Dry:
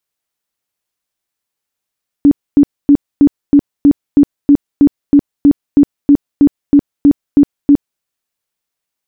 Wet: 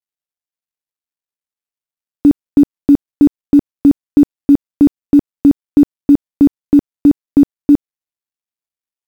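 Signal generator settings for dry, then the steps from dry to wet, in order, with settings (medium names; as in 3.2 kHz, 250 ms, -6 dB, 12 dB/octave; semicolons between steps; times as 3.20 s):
tone bursts 286 Hz, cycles 18, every 0.32 s, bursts 18, -2.5 dBFS
companding laws mixed up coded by A; wow and flutter 19 cents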